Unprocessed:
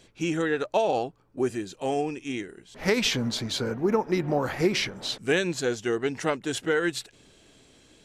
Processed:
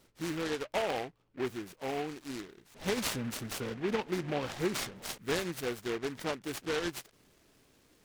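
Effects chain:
short delay modulated by noise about 1,600 Hz, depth 0.11 ms
level −8.5 dB

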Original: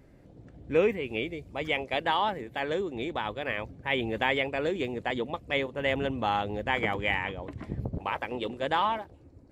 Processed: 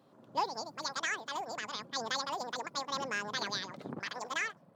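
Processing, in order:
wrong playback speed 7.5 ips tape played at 15 ips
high-pass filter 130 Hz 24 dB per octave
level −7.5 dB

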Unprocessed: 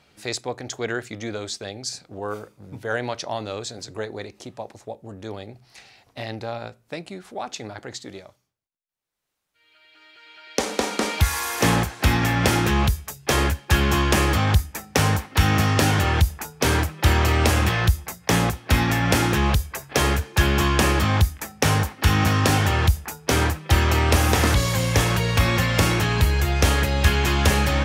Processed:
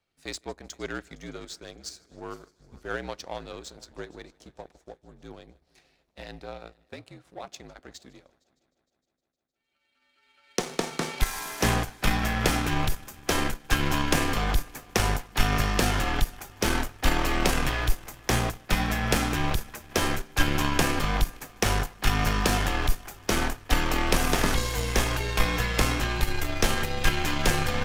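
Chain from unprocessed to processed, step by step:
frequency shifter −55 Hz
echo machine with several playback heads 154 ms, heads first and third, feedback 66%, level −21 dB
power curve on the samples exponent 1.4

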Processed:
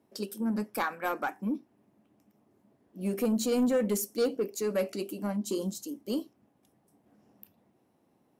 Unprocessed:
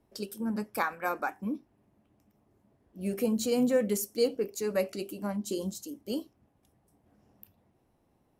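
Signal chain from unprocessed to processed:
Bessel high-pass filter 180 Hz, order 2
parametric band 230 Hz +4 dB 1.4 octaves
soft clipping −21.5 dBFS, distortion −15 dB
level +1 dB

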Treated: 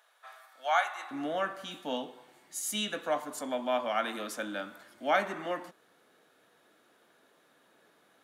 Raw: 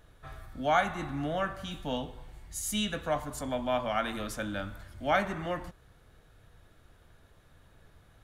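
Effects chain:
high-pass filter 680 Hz 24 dB per octave, from 0:01.11 240 Hz

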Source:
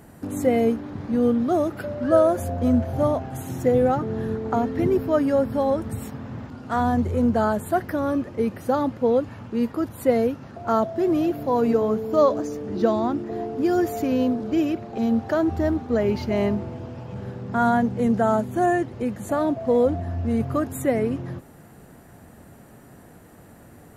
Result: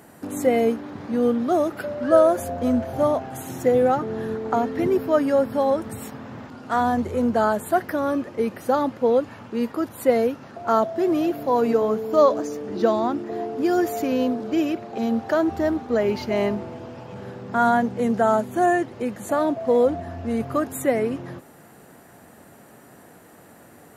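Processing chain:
high-pass filter 340 Hz 6 dB per octave
level +3 dB

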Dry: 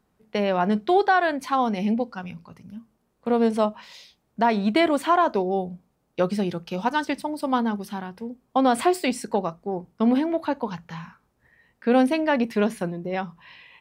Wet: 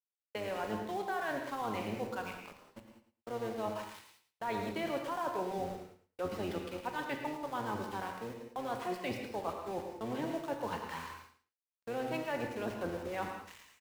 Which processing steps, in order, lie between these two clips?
sub-octave generator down 1 octave, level 0 dB
dynamic equaliser 170 Hz, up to +3 dB, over −32 dBFS, Q 0.8
harmonic and percussive parts rebalanced percussive +4 dB
three-way crossover with the lows and the highs turned down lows −17 dB, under 320 Hz, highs −22 dB, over 4,100 Hz
reversed playback
downward compressor 8 to 1, threshold −30 dBFS, peak gain reduction 16 dB
reversed playback
centre clipping without the shift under −41.5 dBFS
noise gate −50 dBFS, range −23 dB
repeating echo 109 ms, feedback 16%, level −11.5 dB
reverb whose tail is shaped and stops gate 220 ms flat, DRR 3 dB
level −5 dB

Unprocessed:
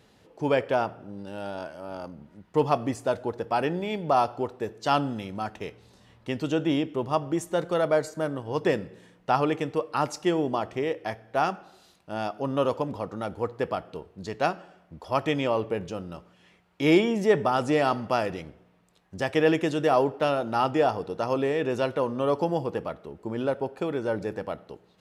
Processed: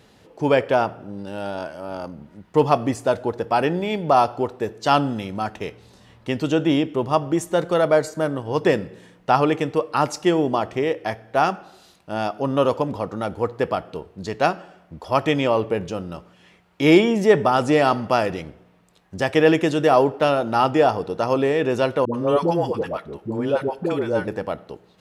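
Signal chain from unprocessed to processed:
0:22.05–0:24.28: all-pass dispersion highs, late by 91 ms, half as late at 530 Hz
level +6 dB

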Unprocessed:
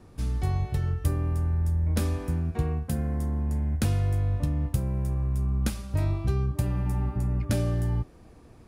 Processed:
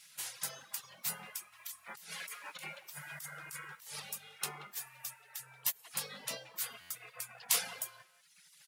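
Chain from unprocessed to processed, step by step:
Butterworth high-pass 240 Hz 48 dB per octave
gate on every frequency bin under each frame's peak −25 dB weak
far-end echo of a speakerphone 180 ms, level −8 dB
reverb reduction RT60 1.3 s
0:01.52–0:04.00: compressor whose output falls as the input rises −60 dBFS, ratio −1
high-shelf EQ 11,000 Hz +7.5 dB
floating-point word with a short mantissa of 4 bits
buffer that repeats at 0:06.80, samples 512, times 8
level +12 dB
Ogg Vorbis 96 kbit/s 44,100 Hz

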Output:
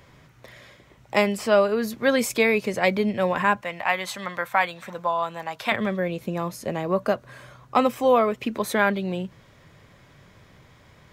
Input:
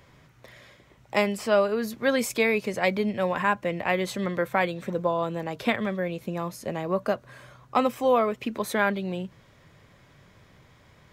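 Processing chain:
0:03.61–0:05.72: low shelf with overshoot 590 Hz −11 dB, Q 1.5
level +3 dB

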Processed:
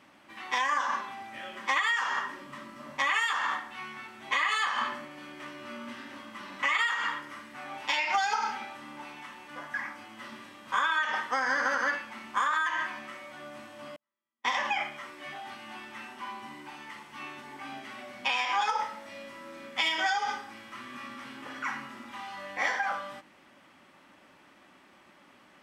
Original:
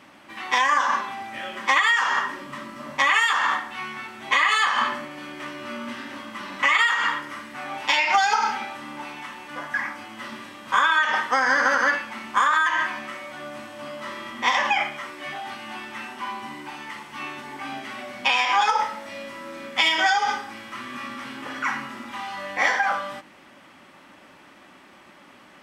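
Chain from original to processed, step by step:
0:13.96–0:14.45: noise gate −24 dBFS, range −49 dB
level −8 dB

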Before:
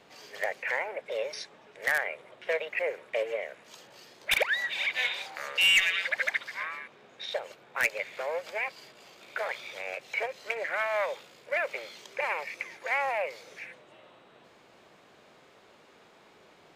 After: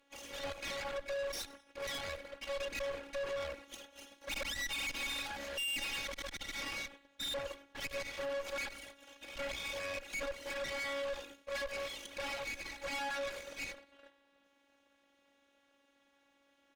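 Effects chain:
lower of the sound and its delayed copy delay 0.31 ms
noise gate −54 dBFS, range −14 dB
parametric band 1,600 Hz +8.5 dB 0.61 octaves
on a send: echo with shifted repeats 94 ms, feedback 44%, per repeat −73 Hz, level −20 dB
on the sum: leveller curve on the samples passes 2
in parallel at −1.5 dB: downward compressor, threshold −35 dBFS, peak gain reduction 17 dB
on the sum: brickwall limiter −21 dBFS, peak gain reduction 9.5 dB
phases set to zero 279 Hz
tube saturation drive 39 dB, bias 0.55
level +3.5 dB

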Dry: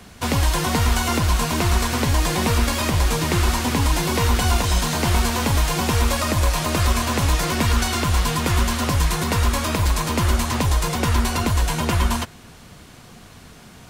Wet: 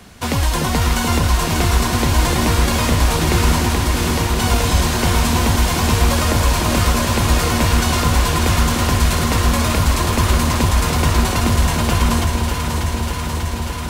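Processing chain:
0:03.60–0:04.40: downward compressor, threshold −19 dBFS, peak gain reduction 6 dB
delay that swaps between a low-pass and a high-pass 296 ms, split 860 Hz, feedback 89%, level −4.5 dB
level +1.5 dB

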